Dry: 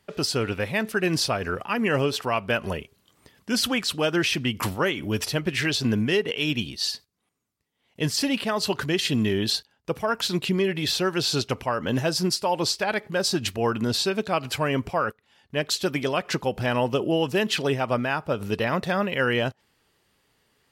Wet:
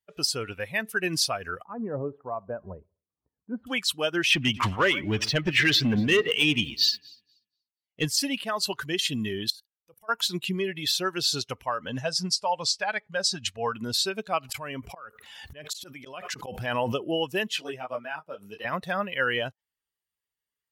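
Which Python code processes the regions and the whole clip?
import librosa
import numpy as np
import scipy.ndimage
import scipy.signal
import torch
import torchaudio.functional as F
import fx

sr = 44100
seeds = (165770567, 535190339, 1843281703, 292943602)

y = fx.chain(x, sr, fx.bessel_lowpass(hz=790.0, order=4),
    fx.echo_feedback(ms=64, feedback_pct=59, wet_db=-22), at=(1.64, 3.67))
y = fx.chain(y, sr, fx.lowpass(hz=4300.0, slope=12),
    fx.leveller(passes=2),
    fx.echo_alternate(ms=120, hz=2100.0, feedback_pct=53, wet_db=-12.5), at=(4.3, 8.05))
y = fx.chain(y, sr, fx.high_shelf(hz=8700.0, db=11.5),
    fx.level_steps(step_db=20), at=(9.5, 10.09))
y = fx.chain(y, sr, fx.lowpass(hz=8200.0, slope=12),
    fx.peak_eq(hz=340.0, db=-12.0, octaves=0.24), at=(11.88, 13.73))
y = fx.chain(y, sr, fx.auto_swell(attack_ms=331.0),
    fx.pre_swell(db_per_s=22.0), at=(14.49, 16.96))
y = fx.chain(y, sr, fx.highpass(hz=170.0, slope=12),
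    fx.detune_double(cents=18), at=(17.48, 18.65))
y = fx.bin_expand(y, sr, power=1.5)
y = fx.tilt_shelf(y, sr, db=-4.0, hz=800.0)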